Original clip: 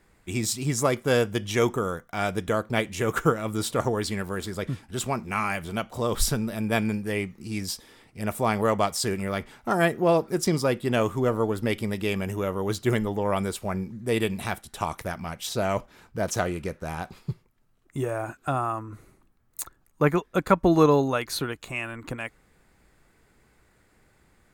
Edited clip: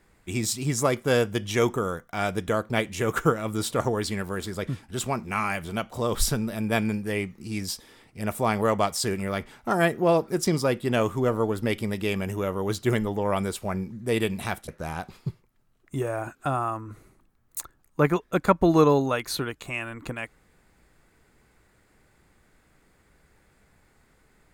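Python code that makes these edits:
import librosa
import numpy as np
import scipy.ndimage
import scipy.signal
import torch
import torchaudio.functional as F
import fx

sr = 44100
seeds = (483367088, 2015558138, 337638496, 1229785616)

y = fx.edit(x, sr, fx.cut(start_s=14.68, length_s=2.02), tone=tone)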